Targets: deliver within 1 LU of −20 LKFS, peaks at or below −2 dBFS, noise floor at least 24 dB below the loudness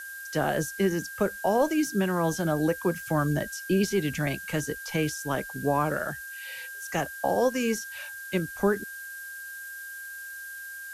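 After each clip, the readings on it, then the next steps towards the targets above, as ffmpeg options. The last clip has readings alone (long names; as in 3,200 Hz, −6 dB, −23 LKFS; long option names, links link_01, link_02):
interfering tone 1,600 Hz; level of the tone −38 dBFS; background noise floor −40 dBFS; target noise floor −53 dBFS; integrated loudness −29.0 LKFS; sample peak −12.5 dBFS; target loudness −20.0 LKFS
→ -af "bandreject=frequency=1600:width=30"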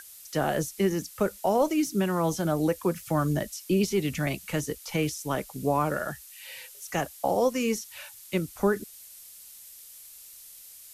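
interfering tone none found; background noise floor −48 dBFS; target noise floor −52 dBFS
→ -af "afftdn=noise_reduction=6:noise_floor=-48"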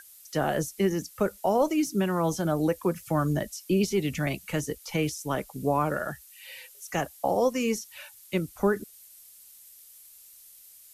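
background noise floor −52 dBFS; integrated loudness −28.0 LKFS; sample peak −12.5 dBFS; target loudness −20.0 LKFS
→ -af "volume=8dB"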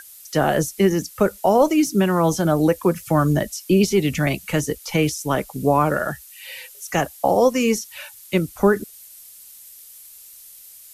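integrated loudness −20.0 LKFS; sample peak −4.5 dBFS; background noise floor −44 dBFS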